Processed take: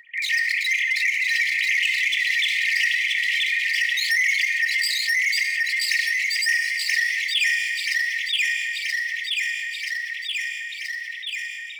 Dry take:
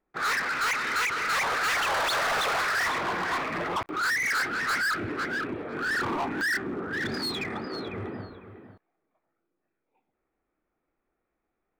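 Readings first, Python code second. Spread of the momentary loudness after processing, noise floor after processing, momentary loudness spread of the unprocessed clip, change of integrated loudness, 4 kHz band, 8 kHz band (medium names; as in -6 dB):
8 LU, -34 dBFS, 9 LU, +6.5 dB, +10.5 dB, +7.0 dB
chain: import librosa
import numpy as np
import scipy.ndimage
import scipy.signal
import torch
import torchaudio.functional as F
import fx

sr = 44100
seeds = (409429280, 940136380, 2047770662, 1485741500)

p1 = fx.sine_speech(x, sr)
p2 = p1 + 0.41 * np.pad(p1, (int(3.8 * sr / 1000.0), 0))[:len(p1)]
p3 = fx.rider(p2, sr, range_db=3, speed_s=0.5)
p4 = p2 + F.gain(torch.from_numpy(p3), -1.0).numpy()
p5 = np.clip(p4, -10.0 ** (-18.5 / 20.0), 10.0 ** (-18.5 / 20.0))
p6 = fx.brickwall_highpass(p5, sr, low_hz=1800.0)
p7 = p6 + fx.echo_feedback(p6, sr, ms=979, feedback_pct=38, wet_db=-3.5, dry=0)
p8 = fx.rev_fdn(p7, sr, rt60_s=0.87, lf_ratio=1.0, hf_ratio=1.0, size_ms=13.0, drr_db=6.5)
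y = fx.env_flatten(p8, sr, amount_pct=70)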